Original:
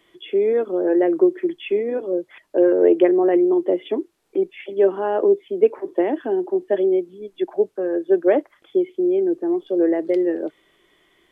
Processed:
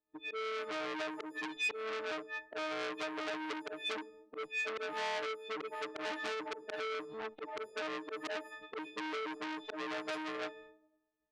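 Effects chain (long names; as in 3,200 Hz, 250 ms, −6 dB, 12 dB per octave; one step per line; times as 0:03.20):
every partial snapped to a pitch grid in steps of 6 semitones
low-pass that shuts in the quiet parts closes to 790 Hz, open at −15 dBFS
downward expander −44 dBFS
dynamic equaliser 220 Hz, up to −8 dB, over −34 dBFS, Q 1.4
harmonic and percussive parts rebalanced harmonic −6 dB
parametric band 170 Hz −7 dB 1.1 octaves
volume swells 334 ms
downward compressor 10 to 1, threshold −38 dBFS, peak gain reduction 19.5 dB
convolution reverb RT60 1.0 s, pre-delay 13 ms, DRR 18.5 dB
saturating transformer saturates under 3,300 Hz
level +8 dB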